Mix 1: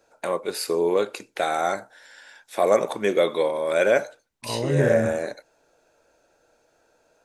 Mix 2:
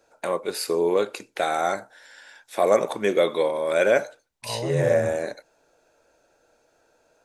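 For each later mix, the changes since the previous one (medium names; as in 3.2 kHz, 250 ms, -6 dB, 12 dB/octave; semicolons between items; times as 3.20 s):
second voice: add static phaser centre 730 Hz, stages 4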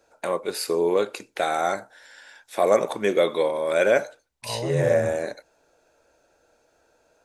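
master: add peaking EQ 67 Hz +10 dB 0.24 oct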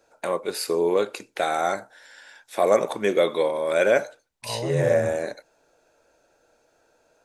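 master: add peaking EQ 67 Hz -10 dB 0.24 oct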